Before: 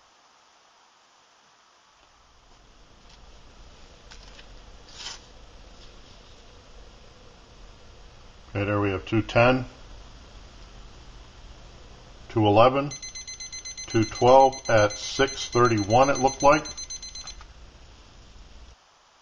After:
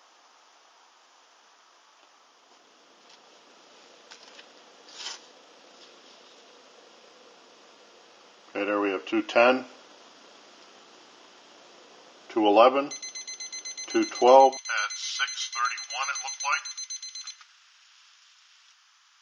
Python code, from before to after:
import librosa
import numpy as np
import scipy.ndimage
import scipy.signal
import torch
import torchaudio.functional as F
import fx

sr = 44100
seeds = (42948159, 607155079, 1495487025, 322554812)

y = fx.highpass(x, sr, hz=fx.steps((0.0, 270.0), (14.57, 1300.0)), slope=24)